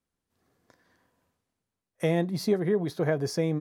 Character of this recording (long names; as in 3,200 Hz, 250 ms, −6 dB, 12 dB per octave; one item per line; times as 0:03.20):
background noise floor −87 dBFS
spectral slope −6.5 dB per octave